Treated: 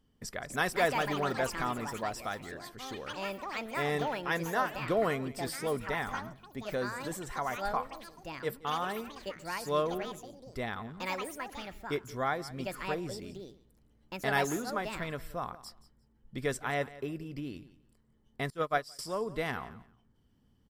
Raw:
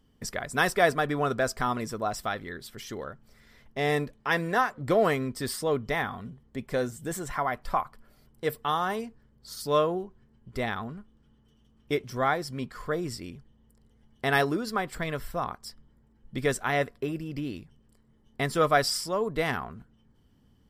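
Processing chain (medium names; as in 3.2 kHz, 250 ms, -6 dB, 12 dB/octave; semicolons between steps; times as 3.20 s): on a send: feedback delay 175 ms, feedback 18%, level -18 dB; on the sum: ever faster or slower copies 338 ms, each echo +5 st, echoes 3, each echo -6 dB; 18.50–18.99 s: upward expansion 2.5:1, over -34 dBFS; trim -6 dB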